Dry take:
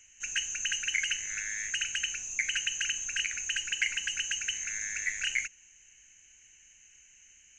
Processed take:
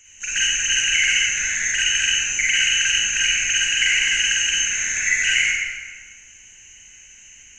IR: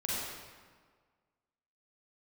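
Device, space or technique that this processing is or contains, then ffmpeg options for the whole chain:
stairwell: -filter_complex "[1:a]atrim=start_sample=2205[s0];[0:a][s0]afir=irnorm=-1:irlink=0,volume=2.66"

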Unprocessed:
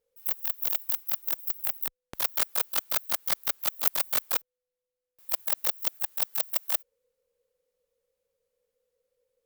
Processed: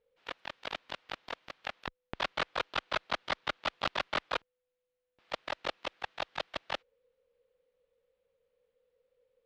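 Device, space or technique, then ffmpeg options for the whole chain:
synthesiser wavefolder: -af "aeval=exprs='0.211*(abs(mod(val(0)/0.211+3,4)-2)-1)':c=same,lowpass=f=3600:w=0.5412,lowpass=f=3600:w=1.3066,volume=1.5"

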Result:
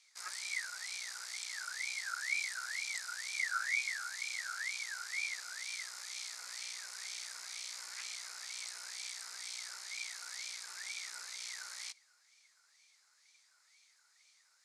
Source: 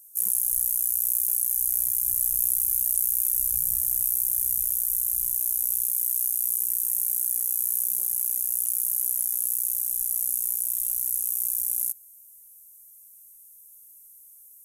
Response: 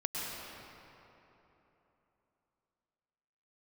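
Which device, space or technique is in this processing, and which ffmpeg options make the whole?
voice changer toy: -af "aeval=exprs='val(0)*sin(2*PI*1900*n/s+1900*0.25/2.1*sin(2*PI*2.1*n/s))':c=same,highpass=470,equalizer=f=860:t=q:w=4:g=4,equalizer=f=1300:t=q:w=4:g=5,equalizer=f=2200:t=q:w=4:g=8,lowpass=f=4700:w=0.5412,lowpass=f=4700:w=1.3066,volume=2.11"

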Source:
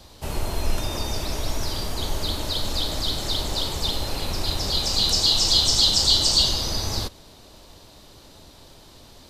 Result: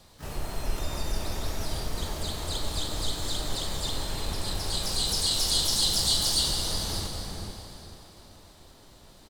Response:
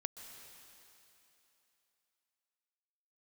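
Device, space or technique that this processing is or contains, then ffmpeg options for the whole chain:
shimmer-style reverb: -filter_complex "[0:a]bandreject=f=60:t=h:w=6,bandreject=f=120:t=h:w=6,bandreject=f=180:t=h:w=6,bandreject=f=240:t=h:w=6,asplit=2[s0][s1];[s1]adelay=440,lowpass=f=1100:p=1,volume=0.708,asplit=2[s2][s3];[s3]adelay=440,lowpass=f=1100:p=1,volume=0.29,asplit=2[s4][s5];[s5]adelay=440,lowpass=f=1100:p=1,volume=0.29,asplit=2[s6][s7];[s7]adelay=440,lowpass=f=1100:p=1,volume=0.29[s8];[s0][s2][s4][s6][s8]amix=inputs=5:normalize=0,asplit=2[s9][s10];[s10]asetrate=88200,aresample=44100,atempo=0.5,volume=0.501[s11];[s9][s11]amix=inputs=2:normalize=0[s12];[1:a]atrim=start_sample=2205[s13];[s12][s13]afir=irnorm=-1:irlink=0,volume=0.531"

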